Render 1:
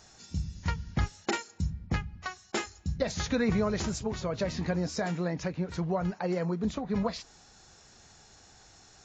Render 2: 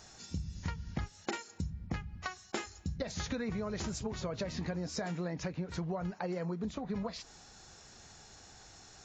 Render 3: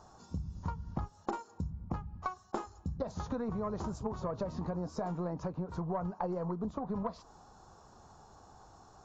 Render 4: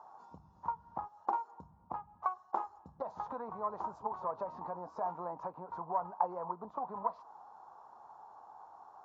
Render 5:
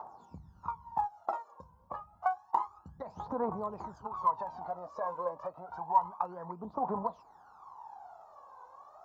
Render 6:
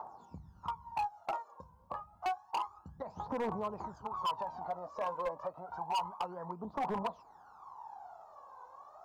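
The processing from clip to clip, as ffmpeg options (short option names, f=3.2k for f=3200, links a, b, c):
-af "acompressor=threshold=-35dB:ratio=6,volume=1dB"
-af "highshelf=f=1.5k:t=q:w=3:g=-11.5,aeval=exprs='0.1*(cos(1*acos(clip(val(0)/0.1,-1,1)))-cos(1*PI/2))+0.00501*(cos(4*acos(clip(val(0)/0.1,-1,1)))-cos(4*PI/2))':c=same"
-af "bandpass=f=910:t=q:w=3.4:csg=0,volume=8dB"
-af "aphaser=in_gain=1:out_gain=1:delay=2:decay=0.77:speed=0.29:type=triangular"
-af "volume=29.5dB,asoftclip=hard,volume=-29.5dB"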